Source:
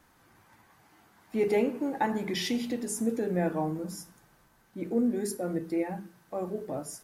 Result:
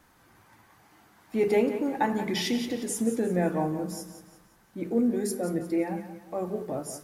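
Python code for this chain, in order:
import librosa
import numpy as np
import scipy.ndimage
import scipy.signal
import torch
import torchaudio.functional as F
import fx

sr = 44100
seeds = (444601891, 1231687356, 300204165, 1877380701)

y = fx.echo_feedback(x, sr, ms=177, feedback_pct=40, wet_db=-11.5)
y = y * 10.0 ** (2.0 / 20.0)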